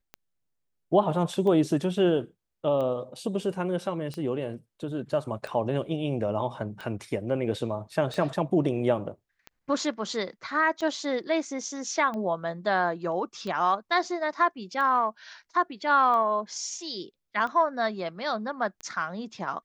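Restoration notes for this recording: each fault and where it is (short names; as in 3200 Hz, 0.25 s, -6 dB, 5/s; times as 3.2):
tick 45 rpm -24 dBFS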